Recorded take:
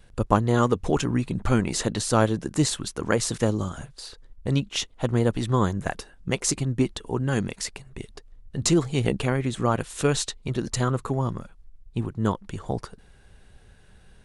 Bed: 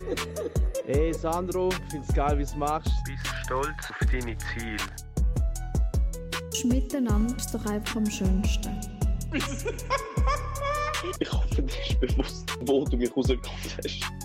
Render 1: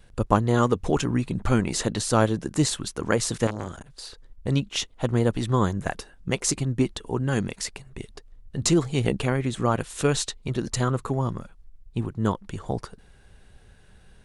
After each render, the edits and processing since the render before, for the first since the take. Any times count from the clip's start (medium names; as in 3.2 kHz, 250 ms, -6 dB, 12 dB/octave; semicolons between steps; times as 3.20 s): 3.47–3.90 s: transformer saturation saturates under 1.3 kHz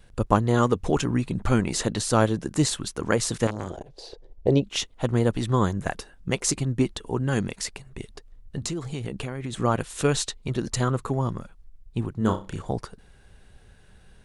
3.70–4.64 s: FFT filter 240 Hz 0 dB, 380 Hz +12 dB, 760 Hz +9 dB, 1.3 kHz -10 dB, 2.3 kHz -4 dB, 5.6 kHz -3 dB, 8.8 kHz -13 dB; 8.58–9.53 s: compression, threshold -27 dBFS; 12.16–12.62 s: flutter echo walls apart 5.4 m, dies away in 0.28 s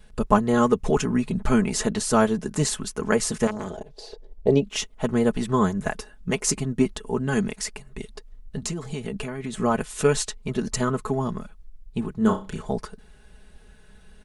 dynamic bell 3.8 kHz, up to -6 dB, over -49 dBFS, Q 2.6; comb 4.7 ms, depth 71%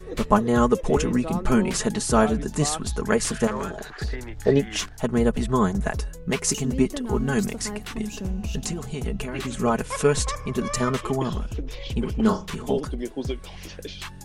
add bed -4.5 dB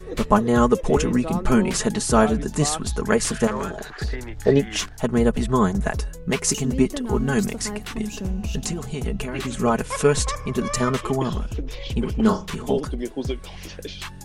trim +2 dB; peak limiter -3 dBFS, peak gain reduction 1 dB